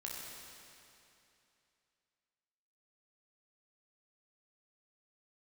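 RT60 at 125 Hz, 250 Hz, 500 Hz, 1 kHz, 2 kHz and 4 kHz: 2.8, 2.8, 2.8, 2.8, 2.8, 2.6 s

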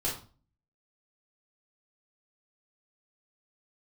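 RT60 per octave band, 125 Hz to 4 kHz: 0.60, 0.50, 0.40, 0.35, 0.30, 0.30 s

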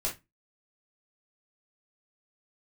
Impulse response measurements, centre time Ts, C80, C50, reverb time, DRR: 19 ms, 20.5 dB, 10.0 dB, 0.20 s, -4.5 dB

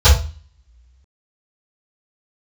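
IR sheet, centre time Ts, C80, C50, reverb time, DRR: 31 ms, 11.5 dB, 6.0 dB, 0.35 s, -18.0 dB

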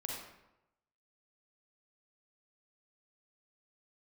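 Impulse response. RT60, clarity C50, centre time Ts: 0.90 s, 0.0 dB, 62 ms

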